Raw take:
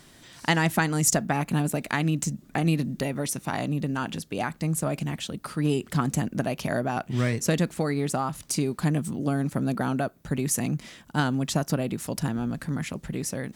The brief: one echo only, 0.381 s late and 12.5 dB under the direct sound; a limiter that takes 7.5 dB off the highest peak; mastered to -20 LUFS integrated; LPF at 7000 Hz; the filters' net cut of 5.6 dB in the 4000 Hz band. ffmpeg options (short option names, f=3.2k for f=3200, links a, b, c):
-af "lowpass=7k,equalizer=f=4k:t=o:g=-7.5,alimiter=limit=-17dB:level=0:latency=1,aecho=1:1:381:0.237,volume=9dB"